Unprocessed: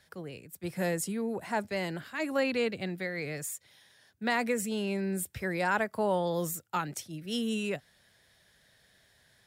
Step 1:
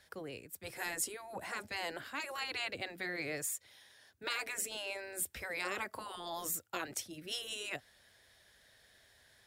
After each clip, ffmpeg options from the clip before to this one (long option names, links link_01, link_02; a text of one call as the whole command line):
ffmpeg -i in.wav -af "afftfilt=real='re*lt(hypot(re,im),0.1)':imag='im*lt(hypot(re,im),0.1)':win_size=1024:overlap=0.75,equalizer=frequency=160:width_type=o:width=0.81:gain=-10" out.wav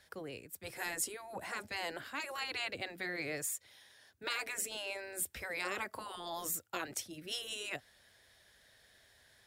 ffmpeg -i in.wav -af anull out.wav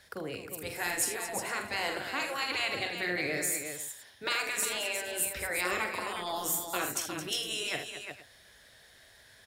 ffmpeg -i in.wav -af "aecho=1:1:45|78|219|357|462:0.447|0.282|0.282|0.422|0.119,volume=5.5dB" out.wav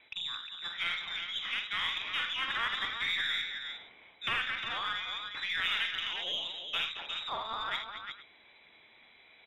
ffmpeg -i in.wav -af "lowpass=frequency=3400:width_type=q:width=0.5098,lowpass=frequency=3400:width_type=q:width=0.6013,lowpass=frequency=3400:width_type=q:width=0.9,lowpass=frequency=3400:width_type=q:width=2.563,afreqshift=-4000,aeval=exprs='0.126*(cos(1*acos(clip(val(0)/0.126,-1,1)))-cos(1*PI/2))+0.00224*(cos(8*acos(clip(val(0)/0.126,-1,1)))-cos(8*PI/2))':channel_layout=same" out.wav